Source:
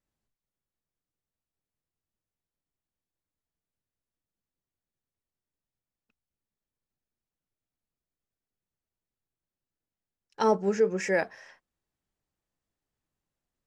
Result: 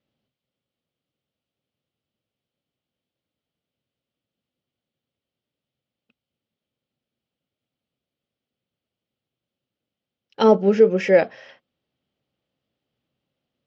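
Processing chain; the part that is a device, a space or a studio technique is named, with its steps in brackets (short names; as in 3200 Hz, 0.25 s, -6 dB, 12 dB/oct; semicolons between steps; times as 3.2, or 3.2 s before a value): guitar cabinet (speaker cabinet 100–4500 Hz, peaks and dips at 130 Hz +4 dB, 240 Hz +5 dB, 540 Hz +6 dB, 980 Hz -7 dB, 1700 Hz -6 dB, 3100 Hz +7 dB); gain +8 dB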